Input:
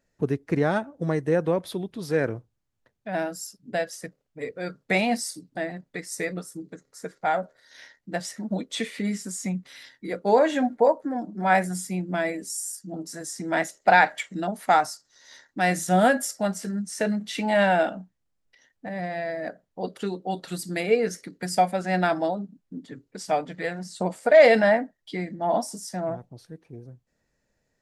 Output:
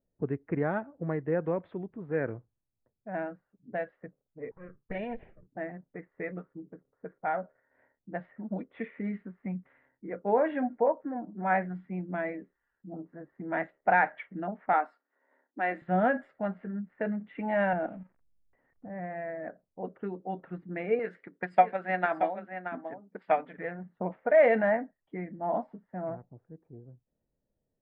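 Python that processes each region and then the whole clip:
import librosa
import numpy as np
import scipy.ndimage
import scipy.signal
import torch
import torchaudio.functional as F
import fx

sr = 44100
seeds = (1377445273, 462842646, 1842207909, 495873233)

y = fx.chain(x, sr, fx.lower_of_two(delay_ms=1.7),
    fx.env_phaser(low_hz=500.0, high_hz=1200.0, full_db=-27.0),
    fx.dynamic_eq(hz=2400.0, q=1.7, threshold_db=-40.0, ratio=4.0, max_db=-5), at=(4.51, 5.47))
y = fx.chain(y, sr, fx.steep_highpass(hz=220.0, slope=48),
    fx.high_shelf(hz=5000.0, db=5.5), at=(14.73, 15.82))
y = fx.chain(y, sr, fx.crossing_spikes(level_db=-27.0),
    fx.tilt_eq(slope=-3.0),
    fx.level_steps(step_db=12), at=(17.73, 18.9))
y = fx.chain(y, sr, fx.transient(attack_db=9, sustain_db=1),
    fx.riaa(side='recording'),
    fx.echo_single(ms=627, db=-9.0), at=(20.99, 23.58))
y = fx.env_lowpass(y, sr, base_hz=620.0, full_db=-19.5)
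y = scipy.signal.sosfilt(scipy.signal.cheby2(4, 50, 5500.0, 'lowpass', fs=sr, output='sos'), y)
y = F.gain(torch.from_numpy(y), -6.5).numpy()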